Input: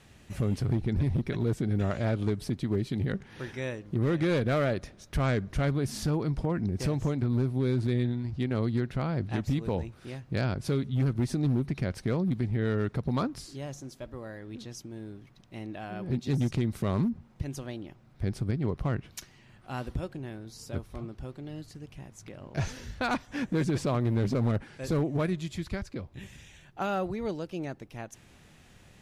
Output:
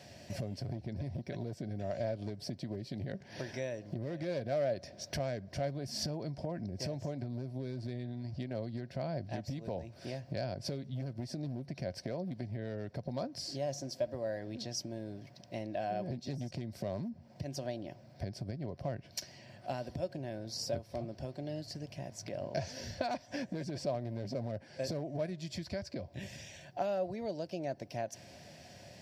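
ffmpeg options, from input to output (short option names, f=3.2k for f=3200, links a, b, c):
-filter_complex "[0:a]asettb=1/sr,asplit=3[a][b][c];[a]atrim=end=12.024[d];[b]atrim=start=12.02:end=12.42,asetpts=PTS-STARTPTS,afade=t=in:d=0.004:c=qsin,afade=t=out:st=0.396:d=0.004:c=qsin,bass=f=250:g=-4,treble=f=4k:g=-2[e];[c]atrim=start=12.416[f];[d][e]acrossfade=d=0.004:c1=hsin:c2=qsin[g];[g][f]acrossfade=d=0.004:c1=qsin:c2=hsin,highpass=f=82:w=0.5412,highpass=f=82:w=1.3066,acompressor=threshold=-39dB:ratio=6,superequalizer=8b=3.55:10b=0.398:14b=2.82:16b=0.631,volume=1.5dB"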